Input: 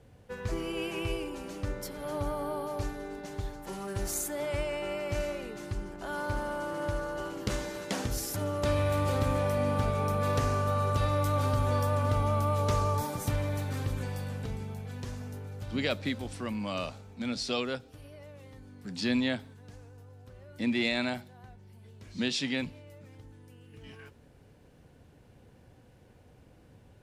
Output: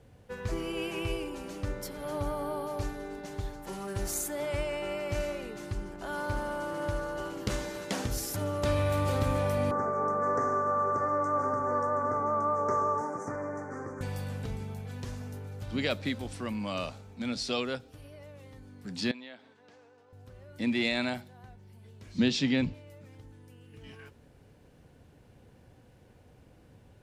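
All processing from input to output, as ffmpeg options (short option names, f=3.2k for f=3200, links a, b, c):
-filter_complex "[0:a]asettb=1/sr,asplit=3[a][b][c];[a]atrim=end=9.714[d];[b]atrim=start=9.71:end=14.01,asetpts=PTS-STARTPTS,afade=t=in:d=0.004:c=qsin,afade=t=out:st=4.296:d=0.004:c=qsin,asuperstop=centerf=3300:order=8:qfactor=0.86,highpass=250,equalizer=f=380:t=q:w=4:g=6,equalizer=f=1.2k:t=q:w=4:g=5,equalizer=f=5.3k:t=q:w=4:g=-7,lowpass=f=6.1k:w=0.5412,lowpass=f=6.1k:w=1.3066[e];[c]atrim=start=14.006[f];[d][e]acrossfade=d=0.004:c1=hsin:c2=qsin[g];[g][f]acrossfade=d=0.004:c1=qsin:c2=hsin,asettb=1/sr,asplit=3[h][i][j];[h]atrim=end=19.114[k];[i]atrim=start=19.11:end=20.13,asetpts=PTS-STARTPTS,afade=t=in:d=0.004:c=qsin,afade=t=out:st=1.016:d=0.004:c=qsin,highpass=370,lowpass=4.5k,acompressor=threshold=-49dB:ratio=2.5:attack=3.2:release=140:knee=1:detection=peak[l];[j]atrim=start=20.126[m];[k][l]acrossfade=d=0.004:c1=hsin:c2=qsin[n];[n][m]acrossfade=d=0.004:c1=qsin:c2=hsin,asettb=1/sr,asplit=3[o][p][q];[o]atrim=end=22.184[r];[p]atrim=start=22.18:end=22.74,asetpts=PTS-STARTPTS,afade=t=in:d=0.004:c=qsin,afade=t=out:st=0.556:d=0.004:c=qsin,lowpass=f=7.4k:w=0.5412,lowpass=f=7.4k:w=1.3066,lowshelf=f=390:g=9[s];[q]atrim=start=22.736[t];[r][s]acrossfade=d=0.004:c1=hsin:c2=qsin[u];[u][t]acrossfade=d=0.004:c1=qsin:c2=hsin"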